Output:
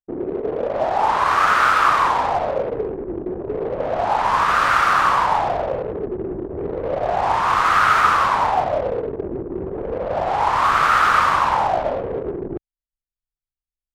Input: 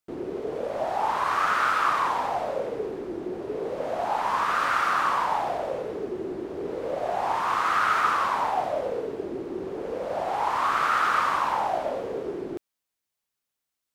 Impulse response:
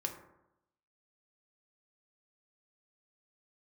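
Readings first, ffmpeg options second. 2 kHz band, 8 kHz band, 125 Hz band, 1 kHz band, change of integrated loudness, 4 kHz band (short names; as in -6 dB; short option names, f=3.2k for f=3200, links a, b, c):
+8.0 dB, +6.5 dB, +12.5 dB, +7.5 dB, +7.5 dB, +7.5 dB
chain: -af "asubboost=boost=3.5:cutoff=130,anlmdn=3.98,volume=8dB"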